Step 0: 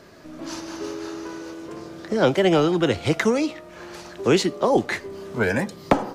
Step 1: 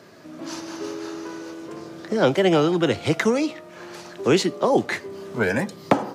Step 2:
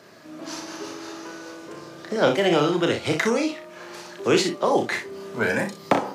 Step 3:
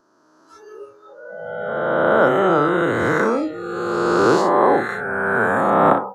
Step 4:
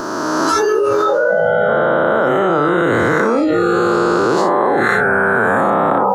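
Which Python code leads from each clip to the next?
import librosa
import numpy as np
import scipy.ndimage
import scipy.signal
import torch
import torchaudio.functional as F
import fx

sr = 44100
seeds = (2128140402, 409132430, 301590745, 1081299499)

y1 = scipy.signal.sosfilt(scipy.signal.butter(4, 100.0, 'highpass', fs=sr, output='sos'), x)
y2 = fx.low_shelf(y1, sr, hz=400.0, db=-6.0)
y2 = fx.room_early_taps(y2, sr, ms=(35, 61), db=(-6.0, -9.0))
y3 = fx.spec_swells(y2, sr, rise_s=2.78)
y3 = fx.high_shelf_res(y3, sr, hz=1800.0, db=-9.0, q=3.0)
y3 = fx.noise_reduce_blind(y3, sr, reduce_db=22)
y3 = y3 * librosa.db_to_amplitude(-1.0)
y4 = fx.env_flatten(y3, sr, amount_pct=100)
y4 = y4 * librosa.db_to_amplitude(-2.0)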